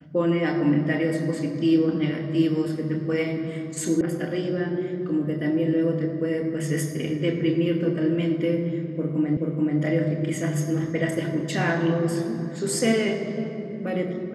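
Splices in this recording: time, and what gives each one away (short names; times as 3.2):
4.01 sound cut off
9.37 repeat of the last 0.43 s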